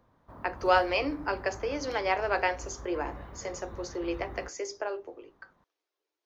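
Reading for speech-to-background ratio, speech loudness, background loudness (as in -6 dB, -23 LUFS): 15.0 dB, -31.5 LUFS, -46.5 LUFS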